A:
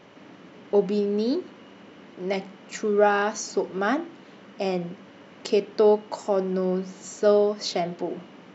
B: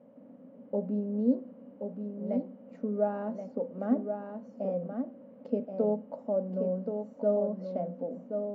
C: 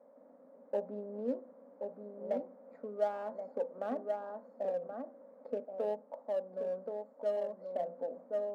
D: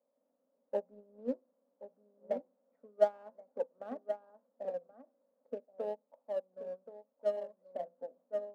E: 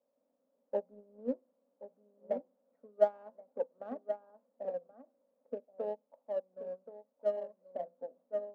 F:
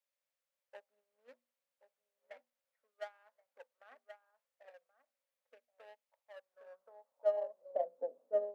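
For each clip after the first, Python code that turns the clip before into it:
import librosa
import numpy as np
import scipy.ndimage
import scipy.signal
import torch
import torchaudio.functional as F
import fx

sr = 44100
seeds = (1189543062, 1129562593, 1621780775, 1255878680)

y1 = fx.double_bandpass(x, sr, hz=360.0, octaves=1.1)
y1 = fx.tilt_eq(y1, sr, slope=-2.0)
y1 = y1 + 10.0 ** (-6.5 / 20.0) * np.pad(y1, (int(1077 * sr / 1000.0), 0))[:len(y1)]
y2 = fx.wiener(y1, sr, points=15)
y2 = scipy.signal.sosfilt(scipy.signal.butter(2, 630.0, 'highpass', fs=sr, output='sos'), y2)
y2 = fx.rider(y2, sr, range_db=4, speed_s=0.5)
y2 = y2 * librosa.db_to_amplitude(1.0)
y3 = fx.upward_expand(y2, sr, threshold_db=-45.0, expansion=2.5)
y3 = y3 * librosa.db_to_amplitude(6.5)
y4 = fx.high_shelf(y3, sr, hz=2700.0, db=-10.0)
y4 = y4 * librosa.db_to_amplitude(1.0)
y5 = fx.hum_notches(y4, sr, base_hz=60, count=4)
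y5 = fx.filter_sweep_highpass(y5, sr, from_hz=2000.0, to_hz=400.0, start_s=6.24, end_s=8.02, q=1.7)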